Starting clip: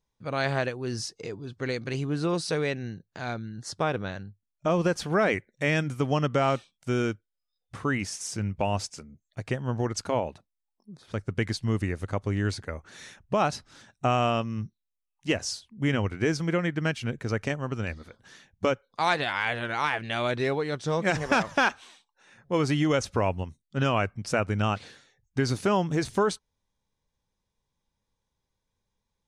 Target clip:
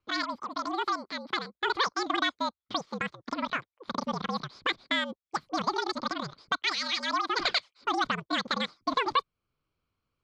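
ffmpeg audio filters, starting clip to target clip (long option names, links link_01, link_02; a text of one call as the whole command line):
ffmpeg -i in.wav -filter_complex "[0:a]asetrate=126126,aresample=44100,highpass=130,equalizer=frequency=130:width_type=q:width=4:gain=-5,equalizer=frequency=290:width_type=q:width=4:gain=-5,equalizer=frequency=1200:width_type=q:width=4:gain=6,equalizer=frequency=1800:width_type=q:width=4:gain=-6,equalizer=frequency=2800:width_type=q:width=4:gain=-10,lowpass=frequency=4000:width=0.5412,lowpass=frequency=4000:width=1.3066,asplit=2[link_01][link_02];[link_02]acompressor=threshold=-38dB:ratio=6,volume=-3dB[link_03];[link_01][link_03]amix=inputs=2:normalize=0,equalizer=frequency=640:width_type=o:width=3:gain=-11.5,afreqshift=-84,volume=4.5dB" out.wav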